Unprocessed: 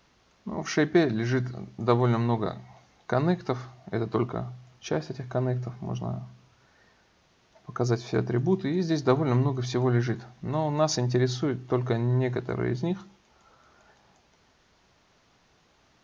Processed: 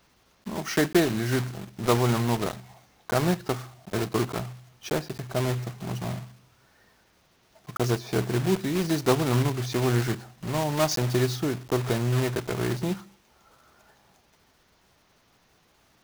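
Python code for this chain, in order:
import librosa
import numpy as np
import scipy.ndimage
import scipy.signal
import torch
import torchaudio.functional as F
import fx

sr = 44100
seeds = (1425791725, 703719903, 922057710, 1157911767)

y = fx.block_float(x, sr, bits=3)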